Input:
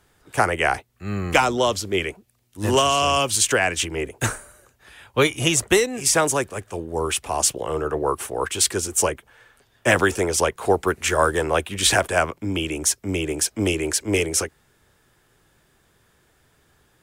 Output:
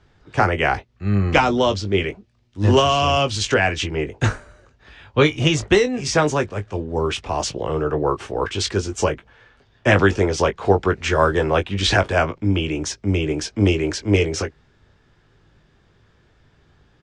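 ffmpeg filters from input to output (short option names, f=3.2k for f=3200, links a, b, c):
-filter_complex "[0:a]lowpass=f=5.5k:w=0.5412,lowpass=f=5.5k:w=1.3066,lowshelf=f=260:g=8.5,asplit=2[a][b];[b]adelay=20,volume=-8.5dB[c];[a][c]amix=inputs=2:normalize=0"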